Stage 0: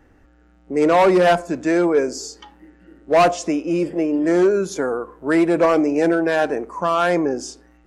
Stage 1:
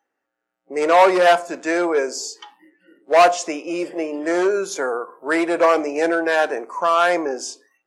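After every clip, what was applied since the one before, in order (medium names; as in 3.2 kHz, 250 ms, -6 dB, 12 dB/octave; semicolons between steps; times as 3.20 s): high-pass 530 Hz 12 dB/octave; spectral noise reduction 20 dB; on a send at -16 dB: reverberation RT60 0.30 s, pre-delay 4 ms; on the sum: trim +3 dB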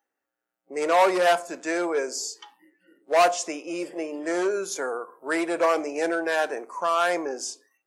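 treble shelf 7.2 kHz +10 dB; trim -6.5 dB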